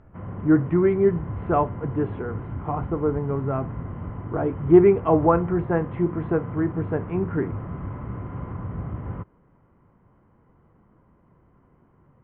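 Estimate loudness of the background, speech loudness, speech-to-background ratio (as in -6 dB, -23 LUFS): -34.0 LUFS, -23.0 LUFS, 11.0 dB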